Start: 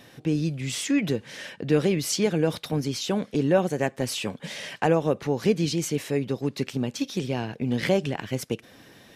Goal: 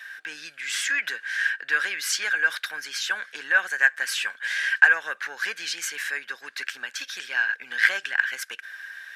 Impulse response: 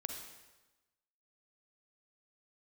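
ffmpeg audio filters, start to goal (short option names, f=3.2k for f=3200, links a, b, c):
-af "acontrast=82,highpass=f=1.6k:t=q:w=15,volume=-6dB"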